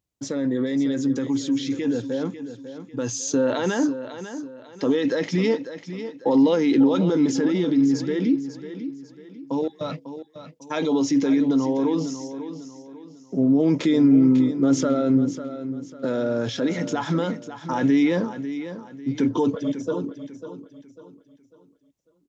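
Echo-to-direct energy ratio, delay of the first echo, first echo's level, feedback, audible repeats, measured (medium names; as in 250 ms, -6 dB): -11.0 dB, 547 ms, -11.5 dB, 36%, 3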